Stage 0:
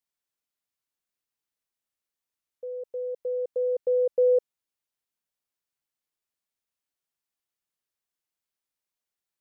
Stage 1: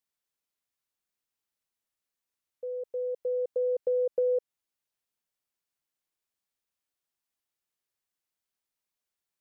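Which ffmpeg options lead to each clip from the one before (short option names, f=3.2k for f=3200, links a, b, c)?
-af "acompressor=threshold=-25dB:ratio=4"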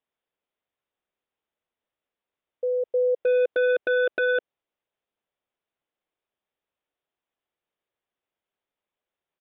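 -af "equalizer=f=510:t=o:w=1.7:g=8,aresample=8000,aeval=exprs='0.112*(abs(mod(val(0)/0.112+3,4)-2)-1)':c=same,aresample=44100,volume=2dB"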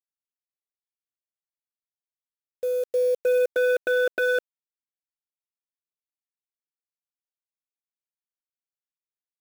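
-af "acrusher=bits=6:mix=0:aa=0.000001"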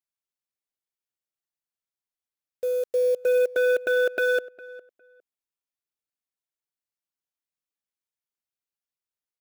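-filter_complex "[0:a]asplit=2[a][b];[b]adelay=407,lowpass=f=2.1k:p=1,volume=-19dB,asplit=2[c][d];[d]adelay=407,lowpass=f=2.1k:p=1,volume=0.2[e];[a][c][e]amix=inputs=3:normalize=0"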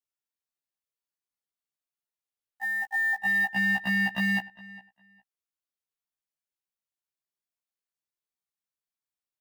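-af "aeval=exprs='val(0)*sin(2*PI*1300*n/s)':c=same,afftfilt=real='re*1.73*eq(mod(b,3),0)':imag='im*1.73*eq(mod(b,3),0)':win_size=2048:overlap=0.75,volume=2dB"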